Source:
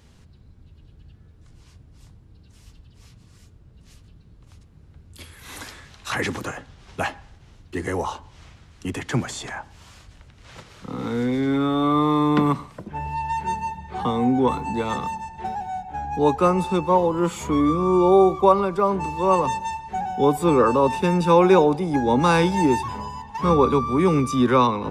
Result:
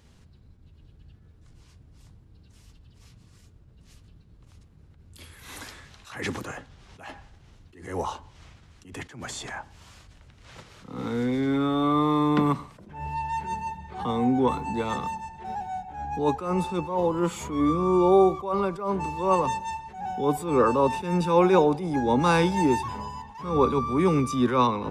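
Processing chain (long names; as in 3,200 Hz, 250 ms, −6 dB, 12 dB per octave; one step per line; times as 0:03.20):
level that may rise only so fast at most 100 dB per second
level −3 dB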